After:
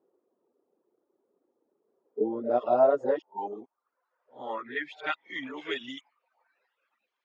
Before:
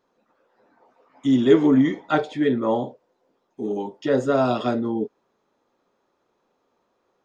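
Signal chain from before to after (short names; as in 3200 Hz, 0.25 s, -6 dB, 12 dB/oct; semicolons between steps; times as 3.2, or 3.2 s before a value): whole clip reversed; reverb removal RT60 0.81 s; band-pass sweep 370 Hz -> 2500 Hz, 1.75–5.19; gain +3 dB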